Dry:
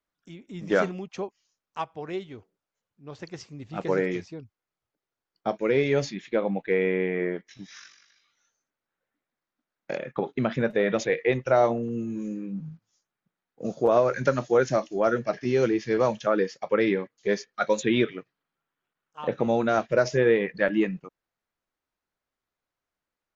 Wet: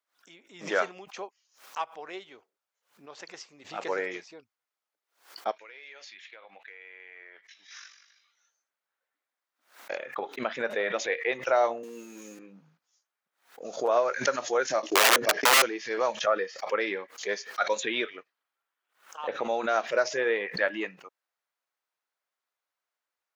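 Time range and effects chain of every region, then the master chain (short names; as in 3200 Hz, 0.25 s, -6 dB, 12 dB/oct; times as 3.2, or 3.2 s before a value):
5.51–7.71 band-pass 2700 Hz, Q 0.8 + compressor 10:1, threshold -42 dBFS
11.83–12.39 zero-crossing step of -50.5 dBFS + HPF 150 Hz 24 dB/oct + high shelf 3400 Hz +12 dB
14.82–15.62 gate -46 dBFS, range -22 dB + bell 330 Hz +12.5 dB 1.7 oct + wrapped overs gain 12.5 dB
16.2–16.61 high shelf 4500 Hz -7 dB + comb 1.6 ms, depth 39%
whole clip: HPF 640 Hz 12 dB/oct; backwards sustainer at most 150 dB/s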